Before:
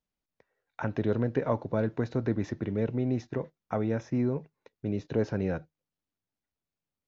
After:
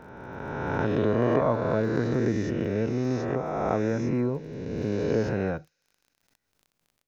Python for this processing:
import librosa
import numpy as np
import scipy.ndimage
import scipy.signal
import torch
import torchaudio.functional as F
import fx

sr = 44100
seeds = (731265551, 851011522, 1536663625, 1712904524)

y = fx.spec_swells(x, sr, rise_s=2.22)
y = fx.echo_wet_highpass(y, sr, ms=63, feedback_pct=84, hz=5400.0, wet_db=-21.0)
y = fx.dmg_crackle(y, sr, seeds[0], per_s=21.0, level_db=-46.0)
y = fx.pre_swell(y, sr, db_per_s=56.0)